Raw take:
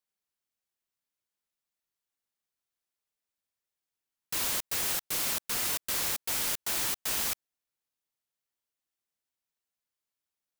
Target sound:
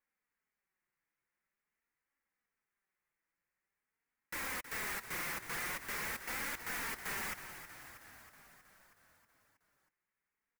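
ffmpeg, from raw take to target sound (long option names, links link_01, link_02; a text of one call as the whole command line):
ffmpeg -i in.wav -filter_complex "[0:a]equalizer=frequency=660:width=5:gain=-7,acontrast=78,highshelf=frequency=2700:width_type=q:width=3:gain=-10,volume=35dB,asoftclip=hard,volume=-35dB,flanger=delay=3.5:depth=2.7:regen=-25:speed=0.46:shape=triangular,asplit=9[link_01][link_02][link_03][link_04][link_05][link_06][link_07][link_08][link_09];[link_02]adelay=319,afreqshift=-45,volume=-11dB[link_10];[link_03]adelay=638,afreqshift=-90,volume=-14.9dB[link_11];[link_04]adelay=957,afreqshift=-135,volume=-18.8dB[link_12];[link_05]adelay=1276,afreqshift=-180,volume=-22.6dB[link_13];[link_06]adelay=1595,afreqshift=-225,volume=-26.5dB[link_14];[link_07]adelay=1914,afreqshift=-270,volume=-30.4dB[link_15];[link_08]adelay=2233,afreqshift=-315,volume=-34.3dB[link_16];[link_09]adelay=2552,afreqshift=-360,volume=-38.1dB[link_17];[link_01][link_10][link_11][link_12][link_13][link_14][link_15][link_16][link_17]amix=inputs=9:normalize=0" out.wav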